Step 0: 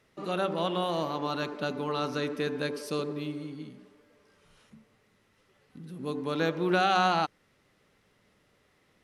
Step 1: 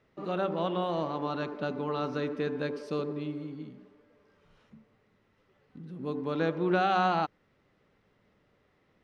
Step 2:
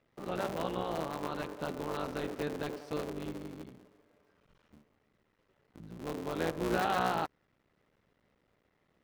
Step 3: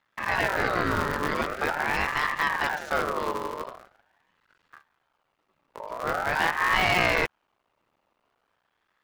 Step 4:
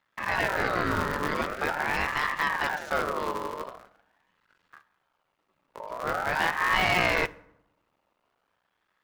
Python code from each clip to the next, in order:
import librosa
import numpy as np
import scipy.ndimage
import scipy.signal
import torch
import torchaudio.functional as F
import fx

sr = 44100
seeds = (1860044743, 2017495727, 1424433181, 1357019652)

y1 = scipy.signal.sosfilt(scipy.signal.butter(2, 5700.0, 'lowpass', fs=sr, output='sos'), x)
y1 = fx.high_shelf(y1, sr, hz=2200.0, db=-9.0)
y2 = fx.cycle_switch(y1, sr, every=3, mode='muted')
y2 = F.gain(torch.from_numpy(y2), -3.0).numpy()
y3 = fx.leveller(y2, sr, passes=2)
y3 = fx.ring_lfo(y3, sr, carrier_hz=1100.0, swing_pct=35, hz=0.44)
y3 = F.gain(torch.from_numpy(y3), 6.5).numpy()
y4 = fx.rev_fdn(y3, sr, rt60_s=0.81, lf_ratio=1.25, hf_ratio=0.6, size_ms=32.0, drr_db=16.0)
y4 = F.gain(torch.from_numpy(y4), -1.5).numpy()